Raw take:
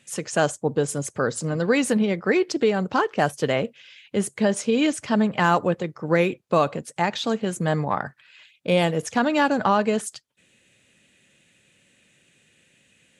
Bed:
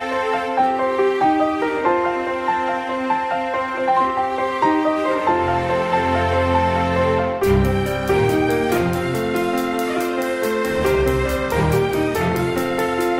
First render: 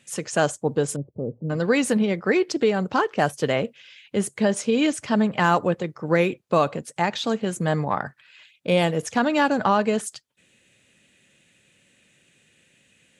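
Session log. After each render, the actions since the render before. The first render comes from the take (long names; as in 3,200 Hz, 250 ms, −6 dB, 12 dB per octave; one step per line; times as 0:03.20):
0:00.96–0:01.50: Gaussian smoothing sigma 17 samples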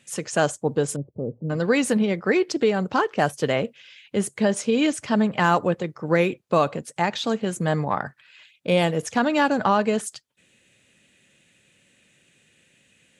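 no processing that can be heard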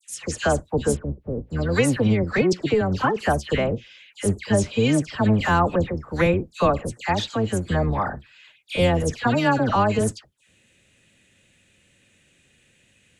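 sub-octave generator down 1 octave, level −1 dB
all-pass dispersion lows, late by 99 ms, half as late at 1,900 Hz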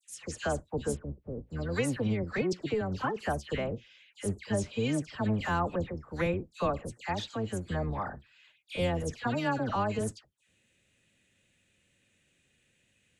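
level −10.5 dB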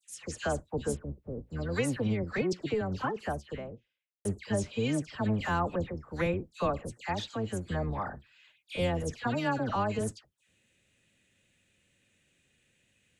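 0:02.89–0:04.25: fade out and dull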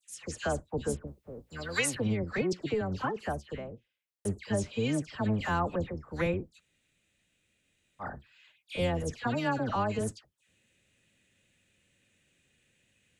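0:01.07–0:01.95: tilt shelving filter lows −9.5 dB, about 780 Hz
0:06.57–0:08.02: fill with room tone, crossfade 0.06 s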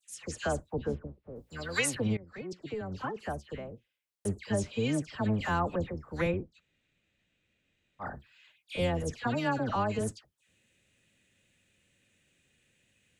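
0:00.73–0:01.36: high-frequency loss of the air 270 metres
0:02.17–0:04.30: fade in equal-power, from −19.5 dB
0:06.31–0:08.02: high-frequency loss of the air 120 metres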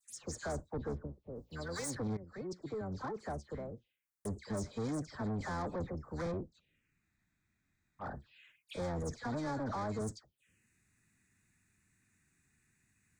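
soft clipping −33.5 dBFS, distortion −7 dB
phaser swept by the level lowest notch 490 Hz, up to 2,800 Hz, full sweep at −42.5 dBFS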